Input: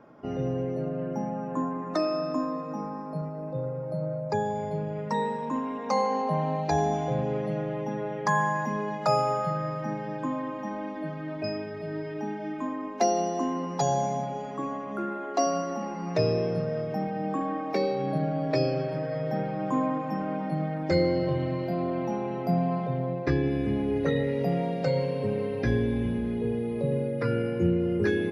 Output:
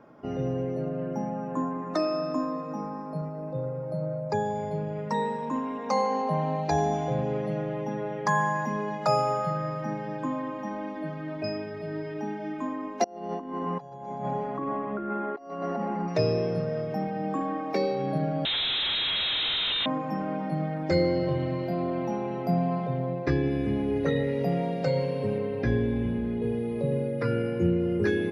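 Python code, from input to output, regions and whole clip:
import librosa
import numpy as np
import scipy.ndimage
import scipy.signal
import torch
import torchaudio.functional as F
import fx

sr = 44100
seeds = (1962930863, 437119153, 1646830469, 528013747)

y = fx.chain(x, sr, fx.lowpass(hz=2100.0, slope=12),
    fx.echo_feedback(ms=125, feedback_pct=53, wet_db=-9.0),
    fx.over_compress(threshold_db=-32.0, ratio=-0.5), at=(13.04, 16.08))
y = fx.chain(y, sr, fx.clip_1bit(),
    fx.freq_invert(carrier_hz=3900),
    fx.env_flatten(amount_pct=100), at=(18.45, 19.86))
y = fx.chain(y, sr, fx.high_shelf(hz=5100.0, db=-10.0),
    fx.notch(hz=5700.0, q=27.0), at=(25.38, 26.42))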